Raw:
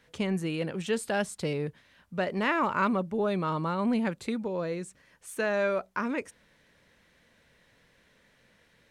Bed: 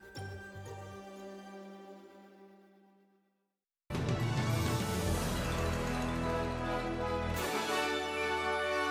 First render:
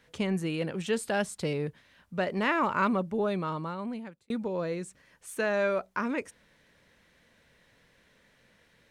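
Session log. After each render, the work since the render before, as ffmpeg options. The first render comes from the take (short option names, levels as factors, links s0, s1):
-filter_complex "[0:a]asplit=2[s0][s1];[s0]atrim=end=4.3,asetpts=PTS-STARTPTS,afade=t=out:st=3.16:d=1.14[s2];[s1]atrim=start=4.3,asetpts=PTS-STARTPTS,afade=t=in:d=0.004:c=hsin[s3];[s2][s3]concat=n=2:v=0:a=1"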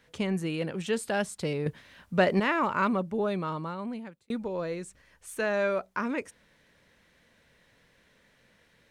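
-filter_complex "[0:a]asettb=1/sr,asplit=3[s0][s1][s2];[s0]atrim=end=1.664[s3];[s1]atrim=start=1.66:end=2.4,asetpts=PTS-STARTPTS,afade=t=in:d=0.004:c=qsin,afade=t=out:st=0.736:d=0.004:c=qsin,acontrast=82[s4];[s2]atrim=start=2.396[s5];[s3][s4]acrossfade=d=0.004:c1=hsin:c2=qsin[s6];[s6][s5]acrossfade=d=0.004:c1=qsin:c2=hsin,asplit=3[s7][s8][s9];[s7]afade=t=out:st=4.36:d=0.02[s10];[s8]asubboost=boost=4:cutoff=78,afade=t=in:st=4.36:d=0.02,afade=t=out:st=5.4:d=0.02[s11];[s9]afade=t=in:st=5.4:d=0.02[s12];[s10][s11][s12]amix=inputs=3:normalize=0"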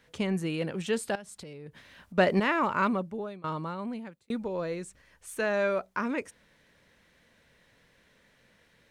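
-filter_complex "[0:a]asettb=1/sr,asplit=3[s0][s1][s2];[s0]atrim=end=1.154[s3];[s1]atrim=start=1.15:end=2.18,asetpts=PTS-STARTPTS,afade=t=in:d=0.004:c=qsin,afade=t=out:st=1.026:d=0.004:c=qsin,acompressor=threshold=0.00891:ratio=10:attack=3.2:release=140:knee=1:detection=peak[s4];[s2]atrim=start=2.176[s5];[s3][s4]acrossfade=d=0.004:c1=hsin:c2=qsin[s6];[s6][s5]acrossfade=d=0.004:c1=qsin:c2=hsin,asplit=2[s7][s8];[s7]atrim=end=3.44,asetpts=PTS-STARTPTS,afade=t=out:st=2.86:d=0.58:silence=0.0794328[s9];[s8]atrim=start=3.44,asetpts=PTS-STARTPTS,afade=t=in:d=0.004:c=hsin:silence=0.0794328[s10];[s9][s10]concat=n=2:v=0:a=1"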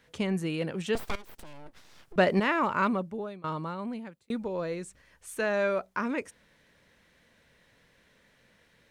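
-filter_complex "[0:a]asettb=1/sr,asplit=3[s0][s1][s2];[s0]atrim=end=0.954[s3];[s1]atrim=start=0.95:end=2.16,asetpts=PTS-STARTPTS,afade=t=in:d=0.004:c=qsin,afade=t=out:st=1.206:d=0.004:c=qsin,aeval=exprs='abs(val(0))':c=same[s4];[s2]atrim=start=2.156[s5];[s3][s4]acrossfade=d=0.004:c1=hsin:c2=qsin[s6];[s6][s5]acrossfade=d=0.004:c1=qsin:c2=hsin"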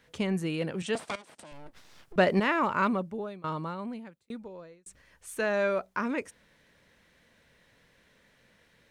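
-filter_complex "[0:a]asettb=1/sr,asplit=3[s0][s1][s2];[s0]atrim=end=0.824[s3];[s1]atrim=start=0.82:end=1.52,asetpts=PTS-STARTPTS,afade=t=in:d=0.004:c=qsin,afade=t=out:st=0.696:d=0.004:c=qsin,highpass=170,equalizer=f=390:t=q:w=4:g=-5,equalizer=f=630:t=q:w=4:g=4,equalizer=f=8700:t=q:w=4:g=7,lowpass=f=9700:w=0.5412,lowpass=f=9700:w=1.3066[s4];[s2]atrim=start=1.516[s5];[s3][s4]acrossfade=d=0.004:c1=hsin:c2=qsin[s6];[s6][s5]acrossfade=d=0.004:c1=qsin:c2=hsin,asplit=2[s7][s8];[s7]atrim=end=4.86,asetpts=PTS-STARTPTS,afade=t=out:st=3.67:d=1.19[s9];[s8]atrim=start=4.86,asetpts=PTS-STARTPTS,afade=t=in:d=0.004:c=hsin[s10];[s9][s10]concat=n=2:v=0:a=1"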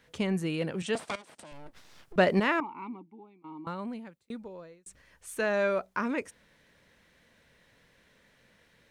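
-filter_complex "[0:a]asettb=1/sr,asplit=3[s0][s1][s2];[s0]atrim=end=2.604[s3];[s1]atrim=start=2.6:end=3.67,asetpts=PTS-STARTPTS,afade=t=in:d=0.004:c=qsin,afade=t=out:st=1.066:d=0.004:c=qsin,asplit=3[s4][s5][s6];[s4]bandpass=f=300:t=q:w=8,volume=1[s7];[s5]bandpass=f=870:t=q:w=8,volume=0.501[s8];[s6]bandpass=f=2240:t=q:w=8,volume=0.355[s9];[s7][s8][s9]amix=inputs=3:normalize=0[s10];[s2]atrim=start=3.666[s11];[s3][s10]acrossfade=d=0.004:c1=hsin:c2=qsin[s12];[s12][s11]acrossfade=d=0.004:c1=qsin:c2=hsin"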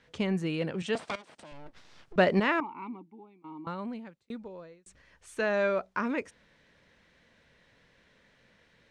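-af "lowpass=6100"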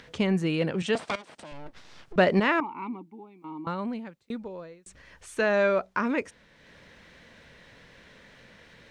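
-filter_complex "[0:a]asplit=2[s0][s1];[s1]alimiter=limit=0.0841:level=0:latency=1:release=366,volume=0.794[s2];[s0][s2]amix=inputs=2:normalize=0,acompressor=mode=upward:threshold=0.00562:ratio=2.5"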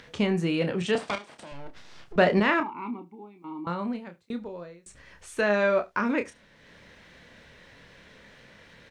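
-filter_complex "[0:a]asplit=2[s0][s1];[s1]adelay=29,volume=0.398[s2];[s0][s2]amix=inputs=2:normalize=0,aecho=1:1:72:0.0794"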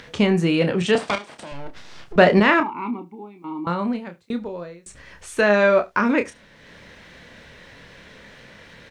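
-af "volume=2.24"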